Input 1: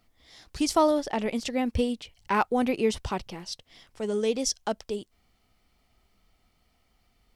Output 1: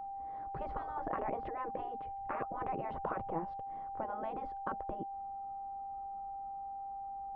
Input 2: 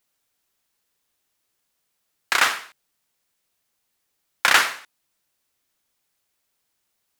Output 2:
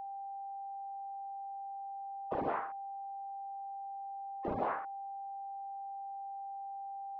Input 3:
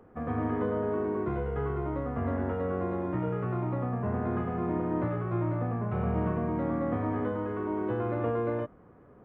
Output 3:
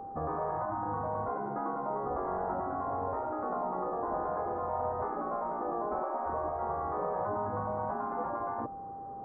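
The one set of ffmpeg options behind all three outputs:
-af "afftfilt=real='re*lt(hypot(re,im),0.0891)':imag='im*lt(hypot(re,im),0.0891)':win_size=1024:overlap=0.75,aeval=exprs='val(0)+0.00447*sin(2*PI*790*n/s)':c=same,lowpass=f=1100:w=0.5412,lowpass=f=1100:w=1.3066,lowshelf=f=440:g=-6,volume=2.66"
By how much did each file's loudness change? -12.5 LU, -22.0 LU, -3.0 LU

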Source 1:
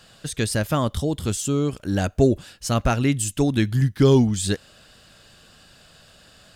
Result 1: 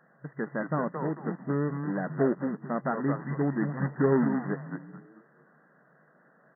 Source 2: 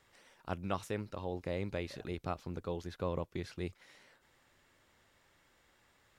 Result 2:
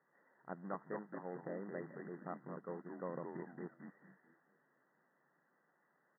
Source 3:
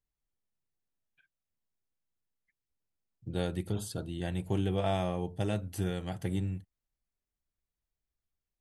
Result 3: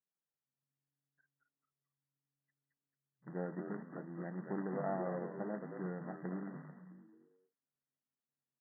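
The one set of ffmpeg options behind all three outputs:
-filter_complex "[0:a]acrusher=bits=2:mode=log:mix=0:aa=0.000001,asplit=5[s0][s1][s2][s3][s4];[s1]adelay=221,afreqshift=-140,volume=0.596[s5];[s2]adelay=442,afreqshift=-280,volume=0.197[s6];[s3]adelay=663,afreqshift=-420,volume=0.0646[s7];[s4]adelay=884,afreqshift=-560,volume=0.0214[s8];[s0][s5][s6][s7][s8]amix=inputs=5:normalize=0,afftfilt=real='re*between(b*sr/4096,130,2000)':imag='im*between(b*sr/4096,130,2000)':win_size=4096:overlap=0.75,volume=0.422"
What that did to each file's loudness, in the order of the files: -8.0 LU, -7.0 LU, -8.0 LU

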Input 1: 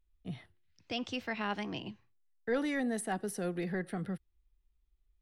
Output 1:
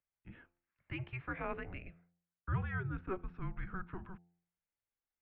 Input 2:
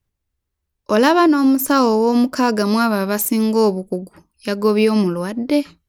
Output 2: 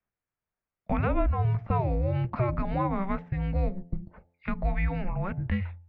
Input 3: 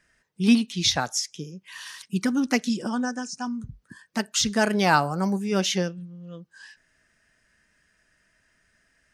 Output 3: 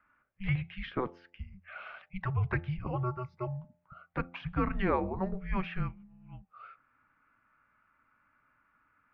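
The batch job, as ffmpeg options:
-filter_complex "[0:a]acrossover=split=300|1200[s0][s1][s2];[s0]acompressor=threshold=0.0562:ratio=4[s3];[s1]acompressor=threshold=0.0562:ratio=4[s4];[s2]acompressor=threshold=0.0316:ratio=4[s5];[s3][s4][s5]amix=inputs=3:normalize=0,highpass=f=260:t=q:w=0.5412,highpass=f=260:t=q:w=1.307,lowpass=f=2800:t=q:w=0.5176,lowpass=f=2800:t=q:w=0.7071,lowpass=f=2800:t=q:w=1.932,afreqshift=-380,bandreject=f=86.59:t=h:w=4,bandreject=f=173.18:t=h:w=4,bandreject=f=259.77:t=h:w=4,bandreject=f=346.36:t=h:w=4,bandreject=f=432.95:t=h:w=4,bandreject=f=519.54:t=h:w=4,bandreject=f=606.13:t=h:w=4,bandreject=f=692.72:t=h:w=4,bandreject=f=779.31:t=h:w=4,bandreject=f=865.9:t=h:w=4,volume=0.75"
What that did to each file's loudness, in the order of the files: -5.5 LU, -13.0 LU, -10.5 LU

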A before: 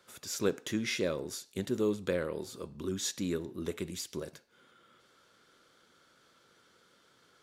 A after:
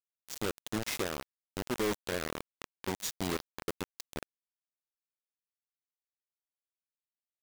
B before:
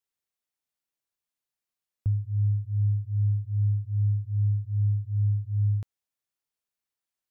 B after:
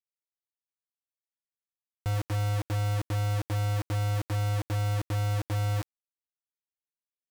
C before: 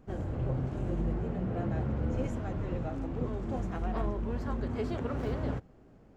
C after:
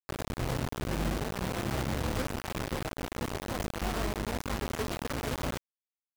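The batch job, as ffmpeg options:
-af "alimiter=limit=0.075:level=0:latency=1:release=34,areverse,acompressor=mode=upward:threshold=0.00447:ratio=2.5,areverse,acrusher=bits=4:mix=0:aa=0.000001,volume=0.794"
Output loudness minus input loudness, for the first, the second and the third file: -2.0 LU, -3.0 LU, 0.0 LU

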